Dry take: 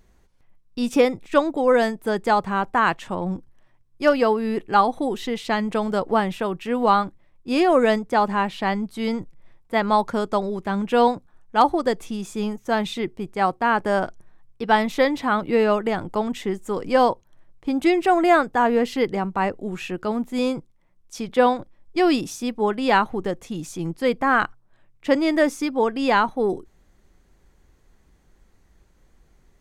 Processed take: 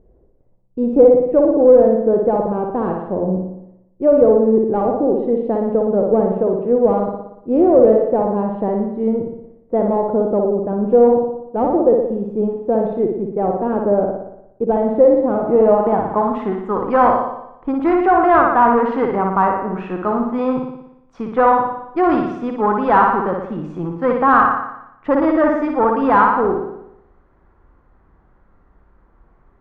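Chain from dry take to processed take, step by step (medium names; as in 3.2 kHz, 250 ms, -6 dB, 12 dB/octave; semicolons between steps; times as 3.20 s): flutter echo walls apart 10.1 m, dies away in 0.81 s; valve stage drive 14 dB, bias 0.35; low-pass sweep 510 Hz -> 1.2 kHz, 15.27–16.38 s; trim +4 dB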